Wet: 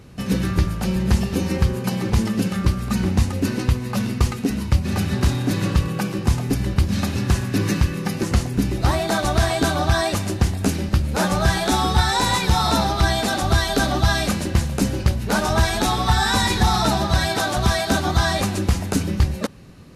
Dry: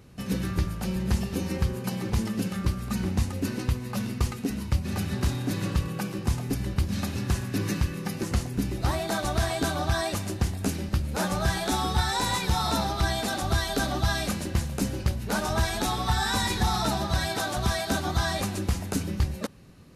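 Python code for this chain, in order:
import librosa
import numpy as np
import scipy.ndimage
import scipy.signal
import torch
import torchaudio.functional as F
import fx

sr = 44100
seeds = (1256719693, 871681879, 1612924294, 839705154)

y = fx.high_shelf(x, sr, hz=11000.0, db=-6.0)
y = y * librosa.db_to_amplitude(7.5)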